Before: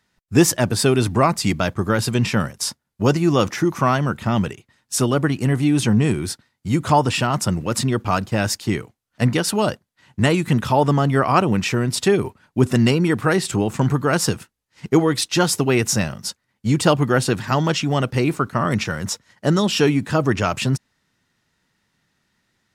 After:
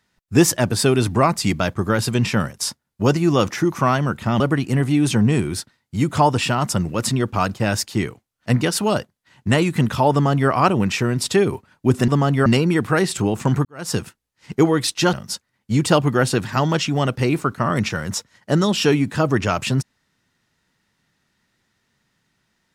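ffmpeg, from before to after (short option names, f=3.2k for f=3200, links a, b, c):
-filter_complex "[0:a]asplit=6[a][b][c][d][e][f];[a]atrim=end=4.402[g];[b]atrim=start=5.118:end=12.802[h];[c]atrim=start=10.838:end=11.222[i];[d]atrim=start=12.798:end=13.99,asetpts=PTS-STARTPTS,afade=t=out:st=1.188:d=0.004:c=hsin[j];[e]atrim=start=13.99:end=15.472,asetpts=PTS-STARTPTS,afade=t=in:d=0.33:c=qua[k];[f]atrim=start=16.078[l];[g][h]acrossfade=d=0.004:c1=hsin:c2=hsin[m];[m][i]acrossfade=d=0.004:c1=hsin:c2=hsin[n];[j][k]concat=n=2:v=0:a=1[o];[n][o]acrossfade=d=0.004:c1=hsin:c2=hsin[p];[p][l]acrossfade=d=0.004:c1=hsin:c2=hsin"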